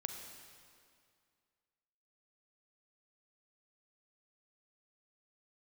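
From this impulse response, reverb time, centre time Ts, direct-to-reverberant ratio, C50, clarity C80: 2.2 s, 51 ms, 4.5 dB, 5.0 dB, 6.0 dB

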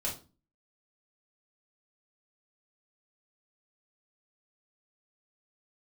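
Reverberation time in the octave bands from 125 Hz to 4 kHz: 0.50, 0.55, 0.35, 0.30, 0.25, 0.30 s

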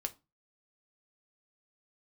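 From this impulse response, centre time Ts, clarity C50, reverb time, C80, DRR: 4 ms, 20.5 dB, 0.25 s, 27.5 dB, 6.5 dB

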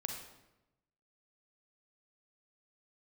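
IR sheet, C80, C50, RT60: 6.5 dB, 4.0 dB, 0.95 s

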